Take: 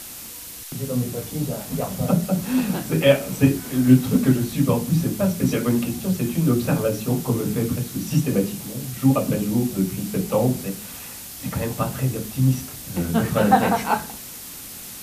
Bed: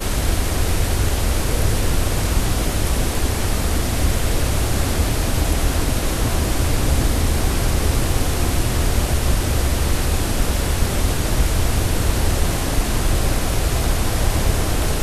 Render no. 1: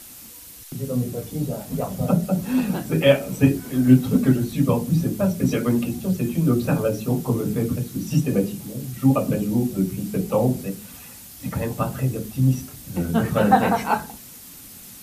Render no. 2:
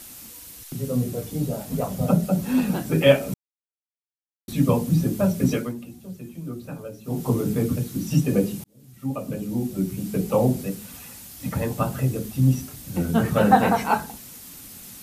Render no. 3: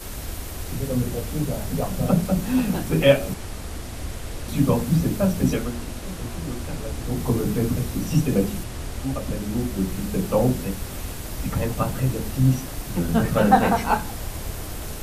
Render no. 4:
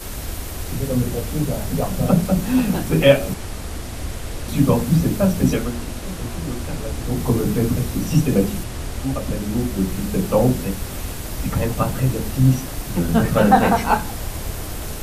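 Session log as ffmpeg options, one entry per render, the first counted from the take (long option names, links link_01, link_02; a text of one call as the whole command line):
ffmpeg -i in.wav -af "afftdn=noise_reduction=7:noise_floor=-37" out.wav
ffmpeg -i in.wav -filter_complex "[0:a]asplit=6[link_01][link_02][link_03][link_04][link_05][link_06];[link_01]atrim=end=3.34,asetpts=PTS-STARTPTS,afade=type=out:start_time=3.336:duration=0.004:curve=hsin[link_07];[link_02]atrim=start=3.34:end=4.48,asetpts=PTS-STARTPTS,volume=0[link_08];[link_03]atrim=start=4.48:end=5.74,asetpts=PTS-STARTPTS,afade=type=in:duration=0.004:curve=hsin,afade=type=out:start_time=1.02:duration=0.24:silence=0.188365[link_09];[link_04]atrim=start=5.74:end=7.03,asetpts=PTS-STARTPTS,volume=-14.5dB[link_10];[link_05]atrim=start=7.03:end=8.64,asetpts=PTS-STARTPTS,afade=type=in:duration=0.24:silence=0.188365,afade=type=out:start_time=1.606:duration=0.004:curve=hsin[link_11];[link_06]atrim=start=8.64,asetpts=PTS-STARTPTS,afade=type=in:duration=1.64[link_12];[link_07][link_08][link_09][link_10][link_11][link_12]concat=n=6:v=0:a=1" out.wav
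ffmpeg -i in.wav -i bed.wav -filter_complex "[1:a]volume=-13.5dB[link_01];[0:a][link_01]amix=inputs=2:normalize=0" out.wav
ffmpeg -i in.wav -af "volume=3.5dB,alimiter=limit=-1dB:level=0:latency=1" out.wav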